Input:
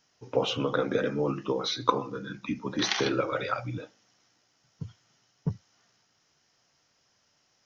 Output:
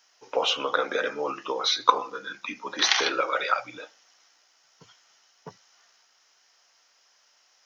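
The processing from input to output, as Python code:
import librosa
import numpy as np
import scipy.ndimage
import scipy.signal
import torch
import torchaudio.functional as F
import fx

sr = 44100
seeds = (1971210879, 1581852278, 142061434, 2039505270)

y = scipy.signal.sosfilt(scipy.signal.butter(2, 710.0, 'highpass', fs=sr, output='sos'), x)
y = y * 10.0 ** (7.0 / 20.0)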